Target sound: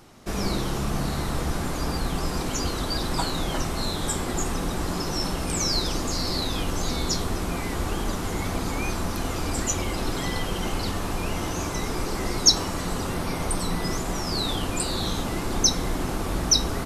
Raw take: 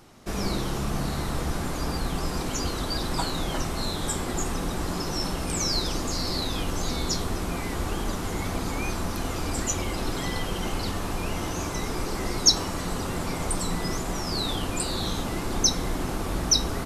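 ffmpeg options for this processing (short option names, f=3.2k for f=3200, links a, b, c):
-filter_complex "[0:a]asettb=1/sr,asplit=3[a][b][c];[a]atrim=end=13.144[d];[b]atrim=start=13.14:end=13.84,asetpts=PTS-STARTPTS,afade=t=in:d=0.004:c=qsin,afade=t=out:st=0.696:d=0.004:c=qsin,bandreject=f=7.4k:w=5.2[e];[c]atrim=start=13.836[f];[d][e]acrossfade=d=0.004:c1=hsin:c2=qsin[g];[g][f]acrossfade=d=0.004:c1=qsin:c2=hsin,volume=1.5dB"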